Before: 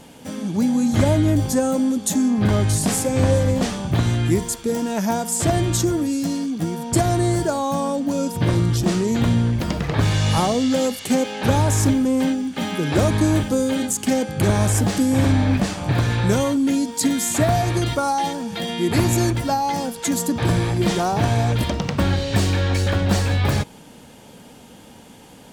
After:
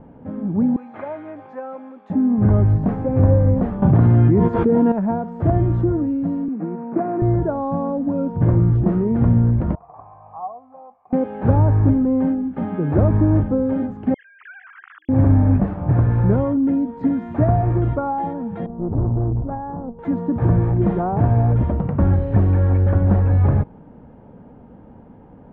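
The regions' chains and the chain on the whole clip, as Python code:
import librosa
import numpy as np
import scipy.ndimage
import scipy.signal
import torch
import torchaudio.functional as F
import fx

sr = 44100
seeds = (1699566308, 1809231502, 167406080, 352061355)

y = fx.chain(x, sr, fx.highpass(hz=880.0, slope=12),
    fx.peak_eq(hz=2400.0, db=7.5, octaves=0.3), at=(0.76, 2.1))
y = fx.chain(y, sr, fx.highpass(hz=110.0, slope=12),
    fx.env_flatten(amount_pct=100), at=(3.82, 4.92))
y = fx.chain(y, sr, fx.cvsd(bps=32000),
    fx.cheby1_bandpass(low_hz=190.0, high_hz=2900.0, order=4),
    fx.resample_bad(factor=8, down='none', up='filtered'), at=(6.48, 7.22))
y = fx.chain(y, sr, fx.formant_cascade(vowel='a'),
    fx.tilt_shelf(db=-10.0, hz=870.0), at=(9.75, 11.13))
y = fx.chain(y, sr, fx.sine_speech(),
    fx.ellip_highpass(hz=1400.0, order=4, stop_db=60), at=(14.14, 15.09))
y = fx.chain(y, sr, fx.ladder_lowpass(hz=1200.0, resonance_pct=30),
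    fx.tilt_eq(slope=-3.0),
    fx.tube_stage(drive_db=18.0, bias=0.75), at=(18.66, 19.99))
y = scipy.signal.sosfilt(scipy.signal.bessel(4, 950.0, 'lowpass', norm='mag', fs=sr, output='sos'), y)
y = fx.low_shelf(y, sr, hz=120.0, db=8.0)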